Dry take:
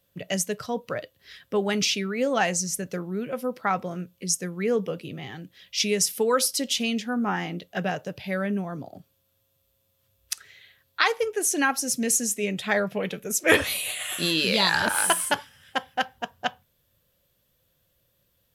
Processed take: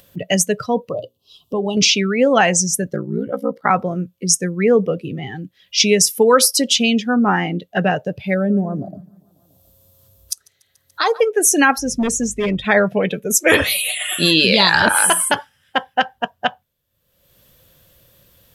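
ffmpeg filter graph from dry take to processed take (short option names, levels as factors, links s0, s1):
-filter_complex "[0:a]asettb=1/sr,asplit=3[s0][s1][s2];[s0]atrim=end=0.894[s3];[s1]atrim=start=0.89:end=1.77,asetpts=PTS-STARTPTS,afade=t=in:d=0.004:c=qsin,afade=t=out:st=0.876:d=0.004:c=qsin,bandreject=f=60:t=h:w=6,bandreject=f=120:t=h:w=6,bandreject=f=180:t=h:w=6,bandreject=f=240:t=h:w=6,bandreject=f=300:t=h:w=6,bandreject=f=360:t=h:w=6,bandreject=f=420:t=h:w=6,bandreject=f=480:t=h:w=6,bandreject=f=540:t=h:w=6,acompressor=threshold=0.0355:ratio=2.5:attack=3.2:release=140:knee=1:detection=peak,asuperstop=centerf=1800:order=12:qfactor=1.2[s4];[s2]atrim=start=1.766[s5];[s3][s4]acrossfade=d=0.004:c1=hsin:c2=qsin[s6];[s6][s5]acrossfade=d=0.004:c1=qsin:c2=hsin,asettb=1/sr,asplit=3[s7][s8][s9];[s7]atrim=end=2.904[s10];[s8]atrim=start=2.9:end=3.7,asetpts=PTS-STARTPTS,afade=t=in:d=0.004:c=qsin,afade=t=out:st=0.796:d=0.004:c=qsin,aeval=exprs='val(0)*sin(2*PI*30*n/s)':c=same,asuperstop=centerf=2500:order=8:qfactor=5.5[s11];[s9]atrim=start=3.696[s12];[s10][s11]acrossfade=d=0.004:c1=hsin:c2=qsin[s13];[s13][s12]acrossfade=d=0.004:c1=qsin:c2=hsin,asettb=1/sr,asplit=3[s14][s15][s16];[s14]atrim=end=8.344[s17];[s15]atrim=start=8.34:end=11.21,asetpts=PTS-STARTPTS,afade=t=in:d=0.004:c=qsin,afade=t=out:st=2.866:d=0.004:c=qsin,equalizer=f=2200:w=0.93:g=-14,aecho=1:1:144|288|432|576|720:0.178|0.0978|0.0538|0.0296|0.0163,atrim=end_sample=126567[s18];[s16]atrim=start=11.206[s19];[s17][s18]acrossfade=d=0.004:c1=hsin:c2=qsin[s20];[s20][s19]acrossfade=d=0.004:c1=qsin:c2=hsin,asettb=1/sr,asplit=3[s21][s22][s23];[s21]atrim=end=11.784[s24];[s22]atrim=start=11.78:end=12.65,asetpts=PTS-STARTPTS,afade=t=in:d=0.004:c=qsin,afade=t=out:st=0.866:d=0.004:c=qsin,aemphasis=mode=reproduction:type=50kf,aeval=exprs='val(0)+0.00398*(sin(2*PI*50*n/s)+sin(2*PI*2*50*n/s)/2+sin(2*PI*3*50*n/s)/3+sin(2*PI*4*50*n/s)/4+sin(2*PI*5*50*n/s)/5)':c=same,aeval=exprs='0.0668*(abs(mod(val(0)/0.0668+3,4)-2)-1)':c=same[s25];[s23]atrim=start=12.646[s26];[s24][s25]acrossfade=d=0.004:c1=hsin:c2=qsin[s27];[s27][s26]acrossfade=d=0.004:c1=qsin:c2=hsin,afftdn=nr=16:nf=-36,acompressor=mode=upward:threshold=0.00562:ratio=2.5,alimiter=level_in=3.76:limit=0.891:release=50:level=0:latency=1,volume=0.891"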